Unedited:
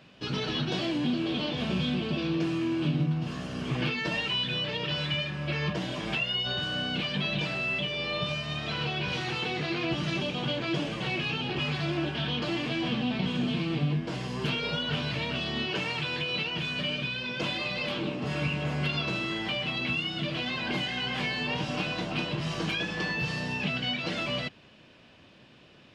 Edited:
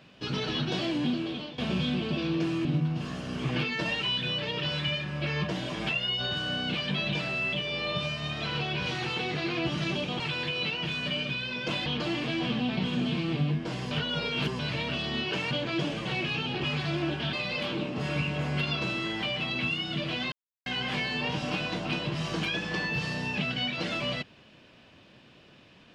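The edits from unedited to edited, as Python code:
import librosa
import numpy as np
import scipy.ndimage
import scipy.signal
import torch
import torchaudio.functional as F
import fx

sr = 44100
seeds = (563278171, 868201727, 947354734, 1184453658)

y = fx.edit(x, sr, fx.fade_out_to(start_s=1.08, length_s=0.5, floor_db=-14.5),
    fx.cut(start_s=2.65, length_s=0.26),
    fx.swap(start_s=10.46, length_s=1.82, other_s=15.93, other_length_s=1.66),
    fx.reverse_span(start_s=14.33, length_s=0.68),
    fx.silence(start_s=20.58, length_s=0.34), tone=tone)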